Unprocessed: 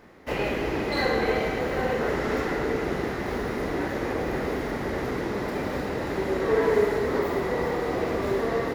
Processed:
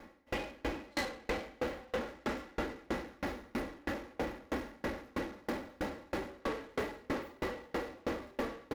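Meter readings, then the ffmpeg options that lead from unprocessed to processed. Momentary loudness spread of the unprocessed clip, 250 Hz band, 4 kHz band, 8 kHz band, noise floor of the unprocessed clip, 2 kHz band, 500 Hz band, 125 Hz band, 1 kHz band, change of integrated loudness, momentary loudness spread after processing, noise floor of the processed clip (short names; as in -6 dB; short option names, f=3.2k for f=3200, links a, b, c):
6 LU, -11.0 dB, -9.0 dB, -8.0 dB, -31 dBFS, -11.5 dB, -14.5 dB, -14.5 dB, -12.0 dB, -13.0 dB, 3 LU, -62 dBFS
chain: -af "aecho=1:1:3.6:0.63,asoftclip=type=tanh:threshold=-28.5dB,aeval=exprs='val(0)*pow(10,-33*if(lt(mod(3.1*n/s,1),2*abs(3.1)/1000),1-mod(3.1*n/s,1)/(2*abs(3.1)/1000),(mod(3.1*n/s,1)-2*abs(3.1)/1000)/(1-2*abs(3.1)/1000))/20)':c=same,volume=1dB"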